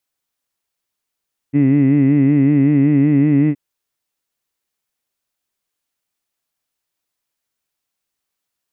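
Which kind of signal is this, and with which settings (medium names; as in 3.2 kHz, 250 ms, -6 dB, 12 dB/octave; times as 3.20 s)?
formant vowel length 2.02 s, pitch 138 Hz, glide +1 st, F1 280 Hz, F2 2 kHz, F3 2.6 kHz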